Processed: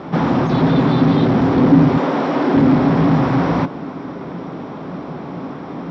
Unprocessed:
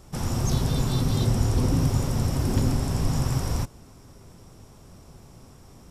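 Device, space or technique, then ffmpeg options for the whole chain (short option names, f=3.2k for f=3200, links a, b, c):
overdrive pedal into a guitar cabinet: -filter_complex "[0:a]asettb=1/sr,asplit=3[a][b][c];[a]atrim=end=1.974[d];[b]atrim=start=1.97:end=2.54,asetpts=PTS-STARTPTS,afade=t=in:d=0.004:c=qsin,afade=t=out:st=0.566:d=0.004:c=qsin,highpass=350[e];[c]atrim=start=2.536[f];[d][e]acrossfade=d=0.004:c1=hsin:c2=qsin[g];[g][f]acrossfade=d=0.004:c1=qsin:c2=hsin,asplit=2[h][i];[i]highpass=f=720:p=1,volume=33dB,asoftclip=type=tanh:threshold=-9.5dB[j];[h][j]amix=inputs=2:normalize=0,lowpass=f=1.1k:p=1,volume=-6dB,highpass=92,equalizer=f=98:t=q:w=4:g=-9,equalizer=f=170:t=q:w=4:g=9,equalizer=f=280:t=q:w=4:g=10,equalizer=f=2.8k:t=q:w=4:g=-5,lowpass=f=3.7k:w=0.5412,lowpass=f=3.7k:w=1.3066,volume=2dB"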